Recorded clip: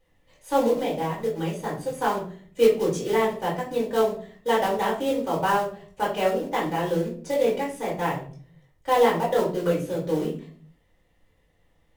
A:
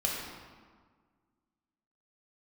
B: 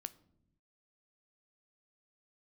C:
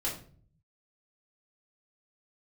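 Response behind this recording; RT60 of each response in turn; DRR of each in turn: C; 1.6 s, 0.80 s, 0.45 s; -4.0 dB, 13.0 dB, -6.0 dB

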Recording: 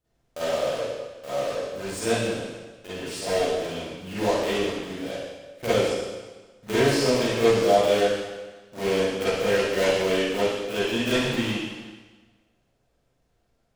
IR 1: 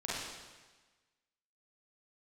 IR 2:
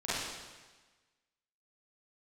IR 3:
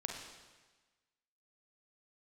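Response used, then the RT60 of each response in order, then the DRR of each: 2; 1.3 s, 1.3 s, 1.3 s; -8.5 dB, -13.0 dB, 0.5 dB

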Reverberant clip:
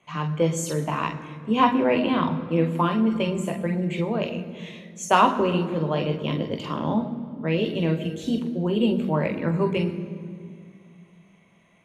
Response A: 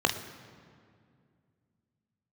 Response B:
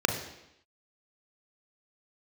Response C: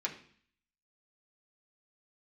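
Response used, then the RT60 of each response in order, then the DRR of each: A; 2.3 s, 0.85 s, 0.55 s; 4.5 dB, 3.5 dB, -2.5 dB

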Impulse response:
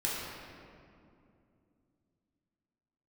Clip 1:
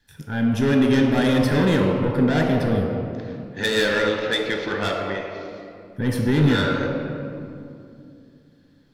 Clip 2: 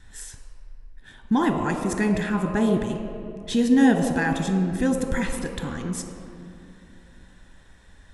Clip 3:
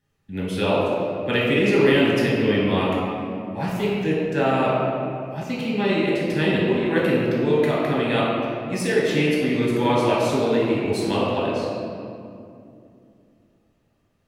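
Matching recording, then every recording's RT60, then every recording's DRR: 3; 2.6 s, 2.6 s, 2.6 s; 0.5 dB, 4.5 dB, -6.5 dB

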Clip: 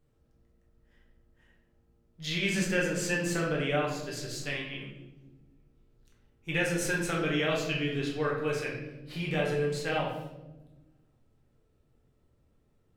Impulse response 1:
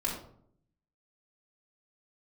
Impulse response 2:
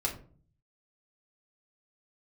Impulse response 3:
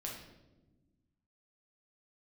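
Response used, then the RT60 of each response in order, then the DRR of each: 3; 0.65 s, 0.45 s, 1.1 s; -5.0 dB, -3.0 dB, -2.5 dB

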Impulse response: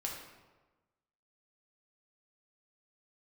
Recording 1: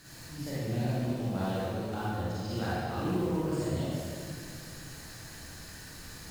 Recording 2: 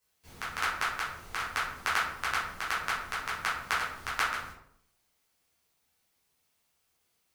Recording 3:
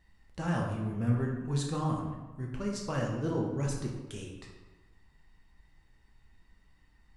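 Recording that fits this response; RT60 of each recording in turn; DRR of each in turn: 3; 2.2 s, 0.65 s, 1.2 s; -10.0 dB, -9.0 dB, -1.5 dB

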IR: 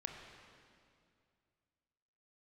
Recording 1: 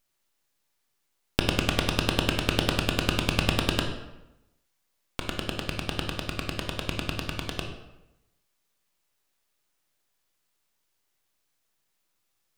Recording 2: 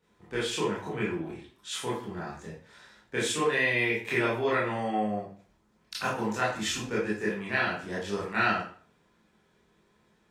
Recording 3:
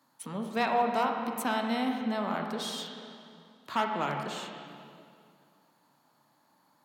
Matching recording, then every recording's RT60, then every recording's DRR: 3; 0.95 s, 0.45 s, 2.3 s; 2.0 dB, -8.0 dB, 2.0 dB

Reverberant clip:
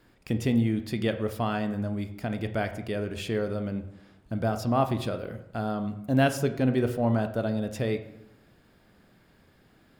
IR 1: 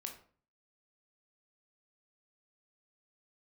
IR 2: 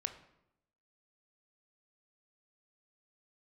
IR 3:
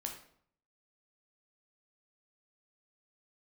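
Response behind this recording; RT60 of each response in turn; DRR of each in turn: 2; 0.45 s, 0.85 s, 0.60 s; 2.5 dB, 8.0 dB, 1.5 dB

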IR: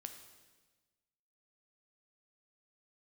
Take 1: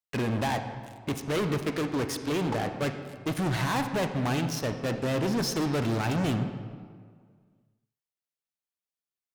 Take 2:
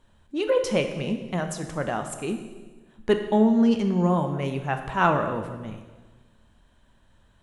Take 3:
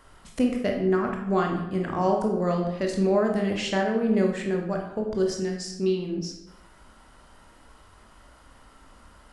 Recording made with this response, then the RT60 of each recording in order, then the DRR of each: 2; 1.9 s, 1.3 s, 0.90 s; 7.5 dB, 6.0 dB, 1.0 dB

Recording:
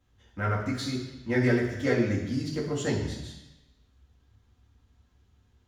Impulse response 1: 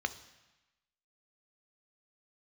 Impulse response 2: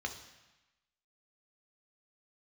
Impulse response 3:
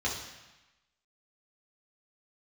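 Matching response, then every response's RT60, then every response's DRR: 3; 1.1 s, 1.0 s, 1.0 s; 10.0 dB, 3.5 dB, -5.5 dB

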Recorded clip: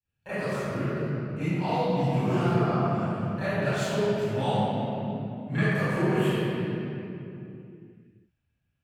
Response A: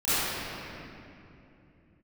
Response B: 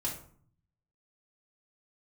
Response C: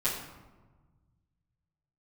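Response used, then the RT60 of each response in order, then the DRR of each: A; 2.8 s, 0.55 s, 1.3 s; -19.0 dB, -6.0 dB, -11.5 dB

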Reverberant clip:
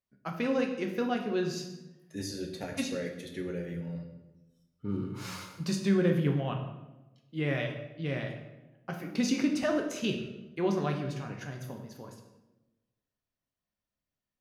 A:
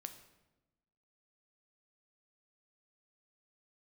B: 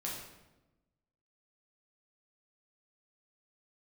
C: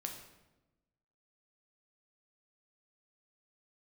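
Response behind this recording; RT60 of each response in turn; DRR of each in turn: C; 1.0 s, 1.0 s, 1.0 s; 7.5 dB, -4.5 dB, 2.5 dB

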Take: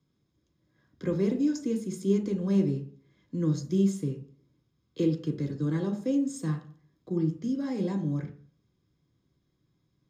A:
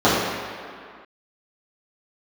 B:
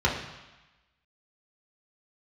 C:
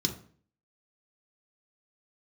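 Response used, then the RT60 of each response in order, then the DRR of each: C; 2.1 s, 1.1 s, 0.50 s; -12.5 dB, -4.0 dB, 3.0 dB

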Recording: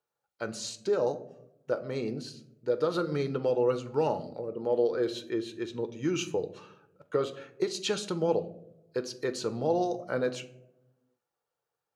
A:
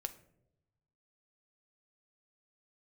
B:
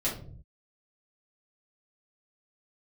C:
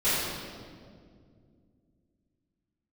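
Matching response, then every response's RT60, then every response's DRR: A; no single decay rate, 0.50 s, 2.1 s; 8.0 dB, -8.0 dB, -16.0 dB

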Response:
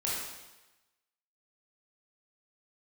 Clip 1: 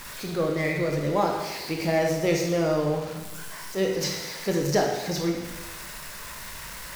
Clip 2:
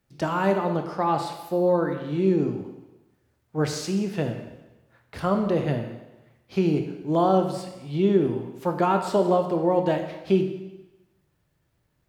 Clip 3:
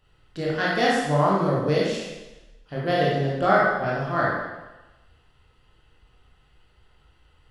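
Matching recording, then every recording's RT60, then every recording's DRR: 3; 1.1 s, 1.1 s, 1.1 s; 0.5 dB, 5.0 dB, -6.5 dB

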